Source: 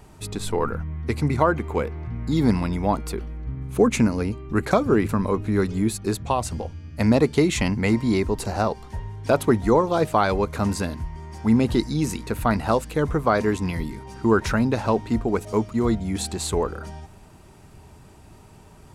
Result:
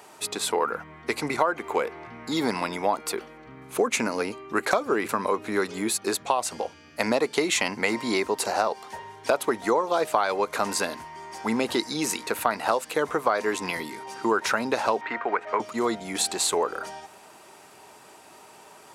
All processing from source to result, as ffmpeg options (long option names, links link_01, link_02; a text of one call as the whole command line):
ffmpeg -i in.wav -filter_complex "[0:a]asettb=1/sr,asplit=3[link_01][link_02][link_03];[link_01]atrim=end=15.014[link_04];[link_02]atrim=start=15.01:end=15.6,asetpts=PTS-STARTPTS,afade=type=in:duration=0.004:curve=qsin,afade=type=out:start_time=0.586:duration=0.004:curve=qsin,tiltshelf=frequency=690:gain=-6.5,acrossover=split=390|1100[link_05][link_06][link_07];[link_05]acompressor=threshold=-32dB:ratio=4[link_08];[link_06]acompressor=threshold=-29dB:ratio=4[link_09];[link_07]acompressor=threshold=-37dB:ratio=4[link_10];[link_08][link_09][link_10]amix=inputs=3:normalize=0,lowpass=frequency=1800:width_type=q:width=2.2[link_11];[link_03]atrim=start=15.596[link_12];[link_04][link_11]acrossfade=duration=0.004:curve1=hsin:curve2=qsin[link_13];[link_13][link_12]acrossfade=duration=0.004:curve1=qsin:curve2=hsin,highpass=520,acompressor=threshold=-26dB:ratio=4,volume=6dB" out.wav